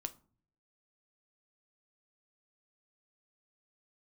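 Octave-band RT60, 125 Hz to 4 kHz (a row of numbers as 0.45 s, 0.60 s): 0.85 s, 0.70 s, 0.45 s, 0.40 s, 0.30 s, 0.25 s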